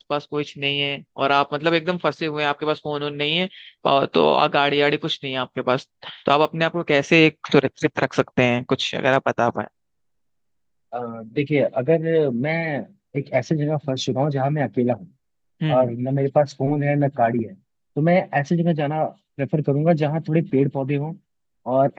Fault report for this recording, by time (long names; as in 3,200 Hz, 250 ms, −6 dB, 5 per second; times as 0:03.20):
0:06.45: drop-out 3.4 ms